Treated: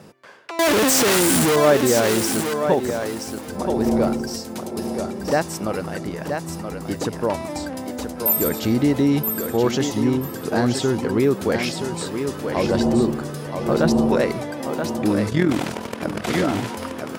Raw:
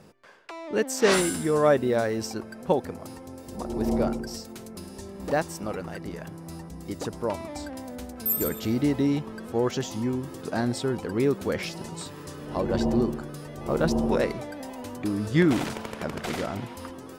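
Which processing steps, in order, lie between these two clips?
0:00.59–0:01.56: sign of each sample alone
high-pass filter 75 Hz
in parallel at +2.5 dB: brickwall limiter −19 dBFS, peak gain reduction 9.5 dB
on the sum: tape wow and flutter 17 cents
on a send: feedback echo with a high-pass in the loop 977 ms, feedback 19%, high-pass 210 Hz, level −6 dB
0:15.30–0:16.27: on the sum: amplitude modulation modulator 41 Hz, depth 50%

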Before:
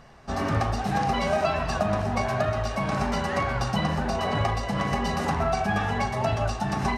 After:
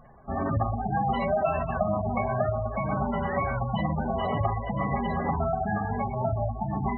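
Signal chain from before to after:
low-pass filter 3,100 Hz 6 dB per octave, from 0:05.39 1,100 Hz
gate on every frequency bin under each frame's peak −15 dB strong
mains-hum notches 50/100/150/200/250/300/350/400/450/500 Hz

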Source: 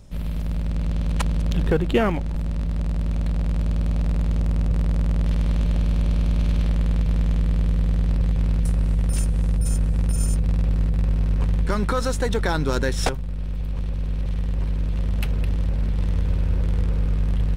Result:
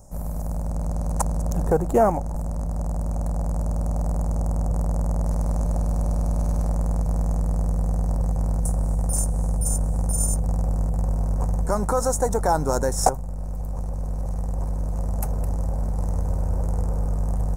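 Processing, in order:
drawn EQ curve 380 Hz 0 dB, 760 Hz +13 dB, 3,300 Hz −23 dB, 6,600 Hz +11 dB
level −2.5 dB

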